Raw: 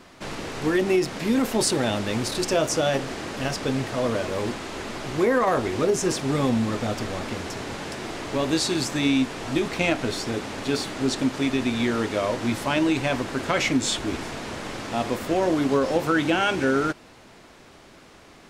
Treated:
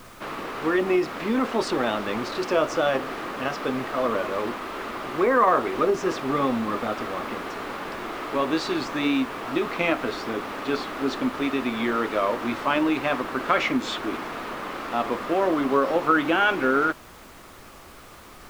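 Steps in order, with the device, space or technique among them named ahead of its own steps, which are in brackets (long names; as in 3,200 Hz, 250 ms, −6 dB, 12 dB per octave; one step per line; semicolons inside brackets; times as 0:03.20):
horn gramophone (band-pass filter 240–3,200 Hz; parametric band 1,200 Hz +8.5 dB 0.45 octaves; tape wow and flutter; pink noise bed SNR 23 dB)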